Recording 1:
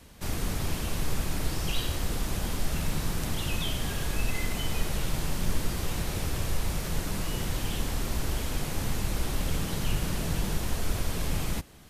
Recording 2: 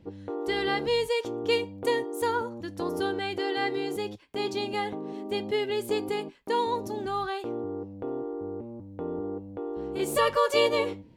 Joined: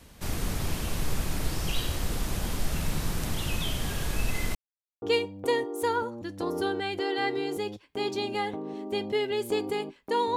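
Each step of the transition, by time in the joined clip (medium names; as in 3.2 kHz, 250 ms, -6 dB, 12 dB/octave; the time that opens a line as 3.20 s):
recording 1
4.55–5.02 s: mute
5.02 s: go over to recording 2 from 1.41 s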